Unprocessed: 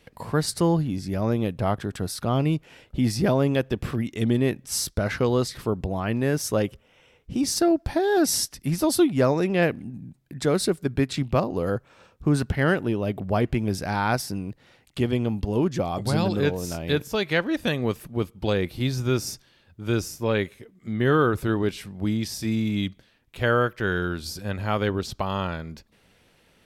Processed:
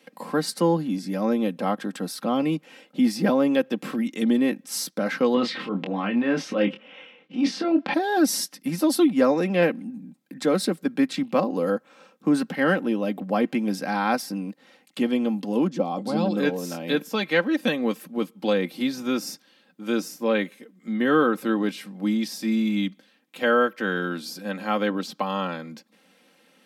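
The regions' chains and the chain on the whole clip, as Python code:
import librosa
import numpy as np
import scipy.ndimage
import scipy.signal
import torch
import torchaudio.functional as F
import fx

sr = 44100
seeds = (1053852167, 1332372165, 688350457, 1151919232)

y = fx.chain(x, sr, fx.transient(attack_db=-10, sustain_db=8),
    fx.lowpass_res(hz=2900.0, q=1.8),
    fx.doubler(ms=25.0, db=-6), at=(5.34, 7.94))
y = fx.chain(y, sr, fx.lowpass(hz=3000.0, slope=6),
    fx.peak_eq(hz=1800.0, db=-8.0, octaves=0.94), at=(15.67, 16.37))
y = y + 0.63 * np.pad(y, (int(3.8 * sr / 1000.0), 0))[:len(y)]
y = fx.dynamic_eq(y, sr, hz=7900.0, q=0.75, threshold_db=-43.0, ratio=4.0, max_db=-5)
y = scipy.signal.sosfilt(scipy.signal.butter(8, 160.0, 'highpass', fs=sr, output='sos'), y)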